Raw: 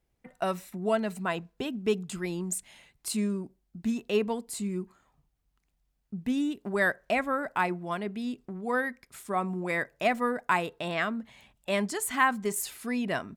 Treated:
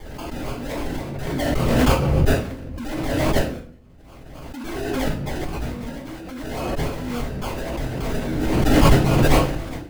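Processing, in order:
wrong playback speed 33 rpm record played at 45 rpm
high-shelf EQ 4,600 Hz +10.5 dB
in parallel at +1.5 dB: downward compressor, threshold −36 dBFS, peak gain reduction 17.5 dB
on the sum: first-order pre-emphasis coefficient 0.8
sample-and-hold swept by an LFO 32×, swing 60% 3.6 Hz
rectangular room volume 43 cubic metres, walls mixed, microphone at 3 metres
background raised ahead of every attack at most 24 dB per second
level −10.5 dB

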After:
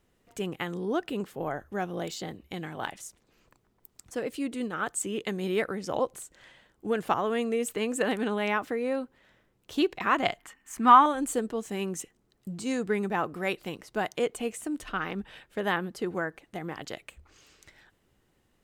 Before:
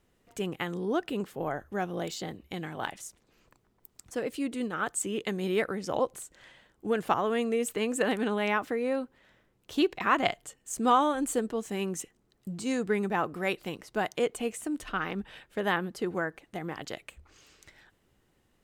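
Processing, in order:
0:10.39–0:11.06: graphic EQ with 10 bands 125 Hz −10 dB, 250 Hz +6 dB, 500 Hz −11 dB, 1,000 Hz +9 dB, 2,000 Hz +10 dB, 4,000 Hz −3 dB, 8,000 Hz −7 dB

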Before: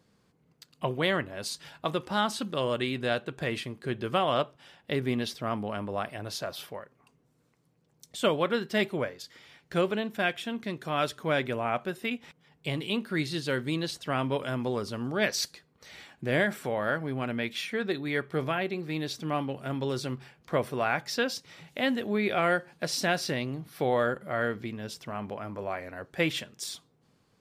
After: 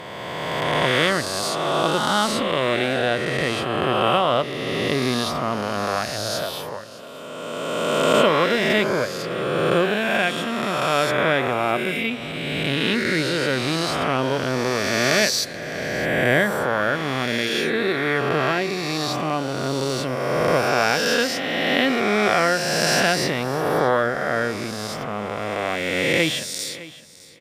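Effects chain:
peak hold with a rise ahead of every peak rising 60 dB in 2.72 s
on a send: repeating echo 610 ms, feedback 18%, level −18 dB
on the sum: level +4 dB

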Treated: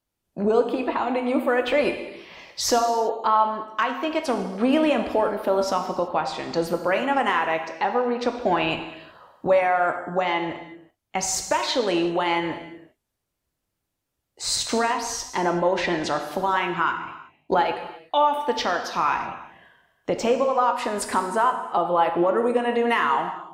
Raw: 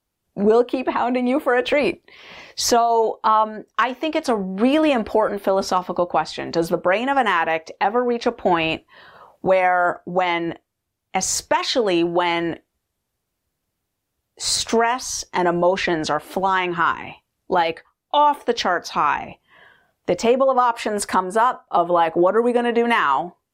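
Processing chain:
0:16.83–0:17.68: transient designer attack +4 dB, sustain −9 dB
reverb whose tail is shaped and stops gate 400 ms falling, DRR 5 dB
level −4.5 dB

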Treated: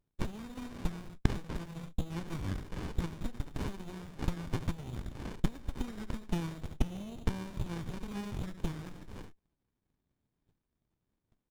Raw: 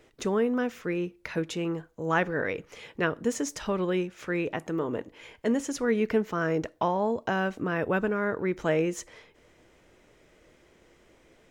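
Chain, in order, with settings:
spectral magnitudes quantised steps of 15 dB
voice inversion scrambler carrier 3,900 Hz
parametric band 1,300 Hz +6.5 dB 0.52 octaves
repeating echo 70 ms, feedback 25%, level −15 dB
downward compressor 16 to 1, threshold −35 dBFS, peak gain reduction 17 dB
treble cut that deepens with the level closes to 1,600 Hz, closed at −34.5 dBFS
noise gate −53 dBFS, range −33 dB
spectral tilt +2 dB per octave
windowed peak hold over 65 samples
level +9.5 dB

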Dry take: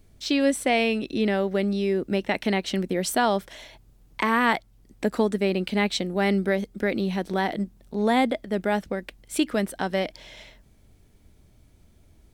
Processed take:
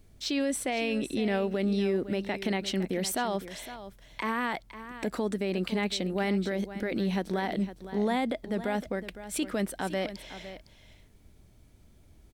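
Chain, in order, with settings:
brickwall limiter −19.5 dBFS, peak gain reduction 10.5 dB
single-tap delay 509 ms −13 dB
level −1.5 dB

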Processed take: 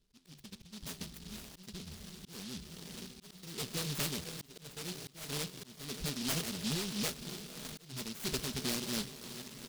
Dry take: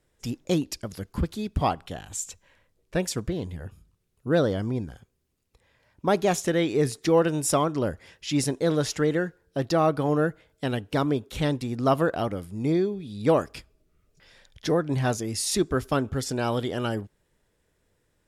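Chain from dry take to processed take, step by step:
adaptive Wiener filter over 41 samples
high-shelf EQ 4,000 Hz +5 dB
comb filter 4.8 ms, depth 93%
flanger 0.6 Hz, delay 8.9 ms, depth 5.6 ms, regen +86%
gain into a clipping stage and back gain 24.5 dB
feedback delay with all-pass diffusion 1,067 ms, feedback 69%, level −15 dB
soft clipping −31.5 dBFS, distortion −11 dB
phase-vocoder stretch with locked phases 0.53×
amplitude tremolo 3 Hz, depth 40%
volume swells 465 ms
high-frequency loss of the air 62 metres
short delay modulated by noise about 4,000 Hz, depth 0.42 ms
level +1.5 dB

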